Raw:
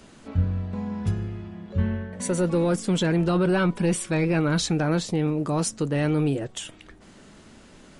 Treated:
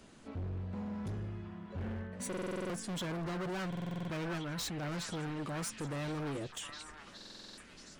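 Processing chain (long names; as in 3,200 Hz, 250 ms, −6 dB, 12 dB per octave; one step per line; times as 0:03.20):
0:04.38–0:04.83: compressor whose output falls as the input rises −28 dBFS, ratio −1
hard clipping −28.5 dBFS, distortion −6 dB
echo through a band-pass that steps 714 ms, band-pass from 1,400 Hz, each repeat 0.7 octaves, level −2 dB
buffer that repeats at 0:02.28/0:03.68/0:07.16, samples 2,048, times 8
level −8 dB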